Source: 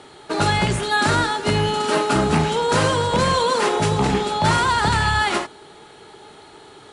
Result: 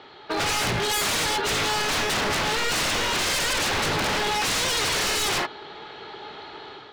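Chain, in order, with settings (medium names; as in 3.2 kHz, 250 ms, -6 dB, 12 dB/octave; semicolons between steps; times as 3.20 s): inverse Chebyshev low-pass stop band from 10 kHz, stop band 50 dB; bass shelf 430 Hz -8.5 dB; level rider gain up to 7 dB; wavefolder -19.5 dBFS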